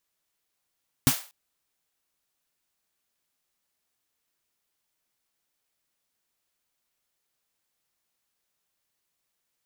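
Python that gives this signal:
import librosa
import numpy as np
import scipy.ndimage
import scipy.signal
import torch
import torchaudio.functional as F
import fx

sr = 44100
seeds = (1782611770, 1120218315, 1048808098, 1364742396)

y = fx.drum_snare(sr, seeds[0], length_s=0.24, hz=140.0, second_hz=260.0, noise_db=-4.5, noise_from_hz=590.0, decay_s=0.09, noise_decay_s=0.36)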